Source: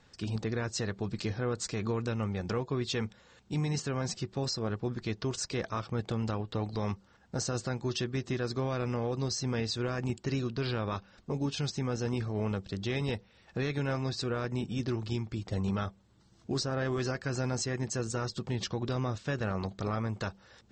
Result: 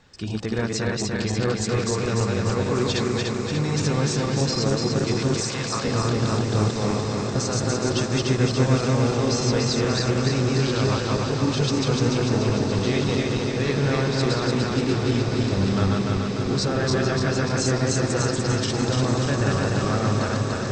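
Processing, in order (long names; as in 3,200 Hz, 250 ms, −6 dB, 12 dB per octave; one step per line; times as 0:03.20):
feedback delay that plays each chunk backwards 147 ms, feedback 78%, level −1 dB
0:05.40–0:05.85: inverse Chebyshev high-pass filter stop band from 370 Hz
feedback delay with all-pass diffusion 1,272 ms, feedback 78%, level −9 dB
level +5.5 dB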